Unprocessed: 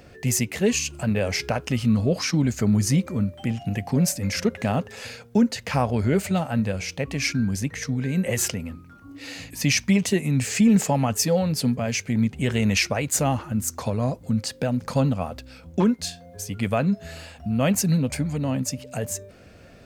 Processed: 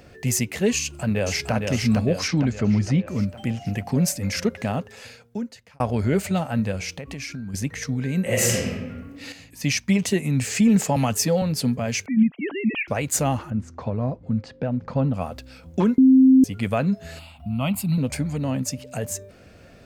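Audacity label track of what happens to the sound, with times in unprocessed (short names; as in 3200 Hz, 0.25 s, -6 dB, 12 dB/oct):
0.800000	1.530000	echo throw 0.46 s, feedback 55%, level -4 dB
2.270000	3.070000	LPF 5600 Hz -> 2900 Hz
4.430000	5.800000	fade out
6.950000	7.540000	compressor, threshold -30 dBFS
8.220000	8.710000	reverb throw, RT60 1.3 s, DRR -4 dB
9.320000	9.990000	upward expander, over -31 dBFS
10.960000	11.420000	three-band squash depth 40%
12.060000	12.880000	sine-wave speech
13.500000	15.140000	tape spacing loss at 10 kHz 33 dB
15.980000	16.440000	bleep 262 Hz -9.5 dBFS
17.190000	17.980000	fixed phaser centre 1700 Hz, stages 6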